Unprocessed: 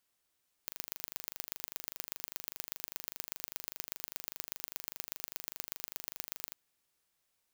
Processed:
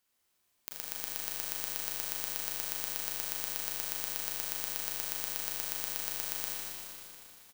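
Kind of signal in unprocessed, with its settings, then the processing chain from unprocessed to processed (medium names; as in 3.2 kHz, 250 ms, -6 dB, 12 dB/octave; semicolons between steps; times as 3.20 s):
pulse train 25 per s, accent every 3, -9.5 dBFS 5.85 s
on a send: frequency-shifting echo 235 ms, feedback 61%, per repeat -40 Hz, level -10 dB; on the sum: Schroeder reverb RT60 2.5 s, combs from 30 ms, DRR -2.5 dB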